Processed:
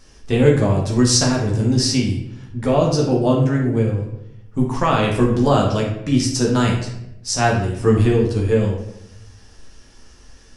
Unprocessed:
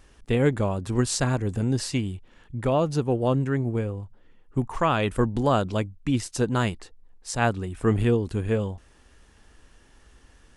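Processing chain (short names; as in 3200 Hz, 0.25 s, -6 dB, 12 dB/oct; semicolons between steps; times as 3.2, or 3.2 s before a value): bell 5500 Hz +11.5 dB 0.7 oct; reverb RT60 0.85 s, pre-delay 11 ms, DRR -2 dB; gain +1 dB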